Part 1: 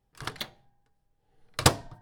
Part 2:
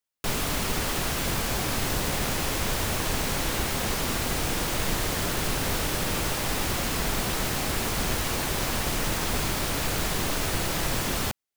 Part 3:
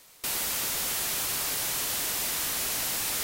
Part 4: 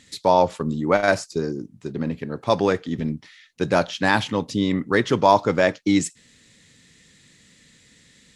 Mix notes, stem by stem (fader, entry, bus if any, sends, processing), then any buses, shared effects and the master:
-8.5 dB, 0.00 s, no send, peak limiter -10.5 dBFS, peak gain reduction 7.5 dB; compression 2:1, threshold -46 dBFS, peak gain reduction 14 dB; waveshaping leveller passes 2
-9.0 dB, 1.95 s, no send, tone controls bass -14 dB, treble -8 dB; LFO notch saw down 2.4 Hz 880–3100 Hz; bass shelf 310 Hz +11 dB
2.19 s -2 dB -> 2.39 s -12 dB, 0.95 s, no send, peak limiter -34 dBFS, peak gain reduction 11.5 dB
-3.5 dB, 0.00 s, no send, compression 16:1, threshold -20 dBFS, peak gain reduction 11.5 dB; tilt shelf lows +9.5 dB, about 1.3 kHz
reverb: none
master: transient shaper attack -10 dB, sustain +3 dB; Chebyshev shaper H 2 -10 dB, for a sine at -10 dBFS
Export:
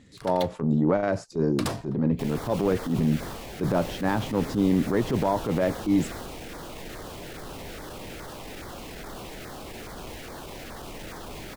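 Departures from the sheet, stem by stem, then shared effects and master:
stem 1: missing compression 2:1, threshold -46 dBFS, peak gain reduction 14 dB; stem 3: muted; master: missing Chebyshev shaper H 2 -10 dB, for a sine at -10 dBFS

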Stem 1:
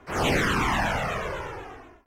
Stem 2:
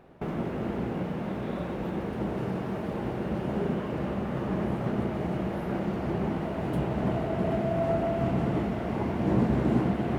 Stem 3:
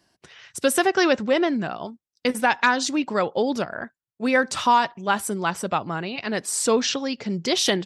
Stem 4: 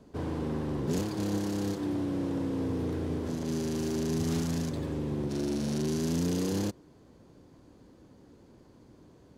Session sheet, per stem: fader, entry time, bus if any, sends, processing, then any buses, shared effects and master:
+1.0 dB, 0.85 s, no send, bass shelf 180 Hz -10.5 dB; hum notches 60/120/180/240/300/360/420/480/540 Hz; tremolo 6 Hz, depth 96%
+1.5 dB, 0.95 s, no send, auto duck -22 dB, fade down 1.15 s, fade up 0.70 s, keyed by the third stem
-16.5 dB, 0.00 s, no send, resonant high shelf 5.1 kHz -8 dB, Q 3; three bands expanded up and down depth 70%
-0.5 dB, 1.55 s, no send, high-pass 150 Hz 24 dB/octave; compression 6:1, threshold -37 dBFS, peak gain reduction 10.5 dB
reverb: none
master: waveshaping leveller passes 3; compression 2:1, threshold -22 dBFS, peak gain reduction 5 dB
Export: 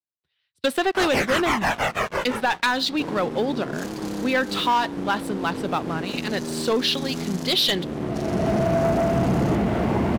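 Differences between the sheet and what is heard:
stem 3 -16.5 dB -> -8.0 dB; stem 4: entry 1.55 s -> 2.85 s

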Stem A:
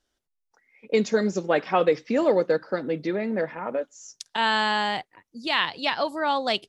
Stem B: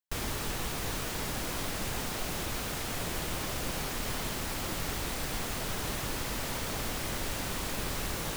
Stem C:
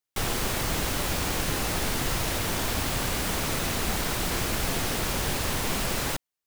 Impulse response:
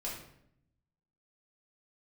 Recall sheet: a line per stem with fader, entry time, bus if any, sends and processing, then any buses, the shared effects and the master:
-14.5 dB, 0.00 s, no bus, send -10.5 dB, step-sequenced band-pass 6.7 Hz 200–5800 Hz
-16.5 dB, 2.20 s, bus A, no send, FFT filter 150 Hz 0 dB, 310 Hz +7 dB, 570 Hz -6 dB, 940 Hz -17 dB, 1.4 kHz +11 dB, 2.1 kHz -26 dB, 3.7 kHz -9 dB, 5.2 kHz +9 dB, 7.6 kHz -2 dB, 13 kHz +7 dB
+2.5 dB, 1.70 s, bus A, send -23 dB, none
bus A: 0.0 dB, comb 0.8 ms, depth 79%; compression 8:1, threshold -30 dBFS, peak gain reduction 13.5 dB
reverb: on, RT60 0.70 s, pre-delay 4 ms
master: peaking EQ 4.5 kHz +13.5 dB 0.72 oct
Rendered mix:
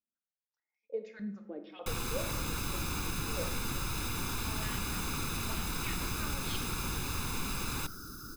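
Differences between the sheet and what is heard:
stem A: send -10.5 dB -> -4 dB; stem C +2.5 dB -> -9.5 dB; master: missing peaking EQ 4.5 kHz +13.5 dB 0.72 oct

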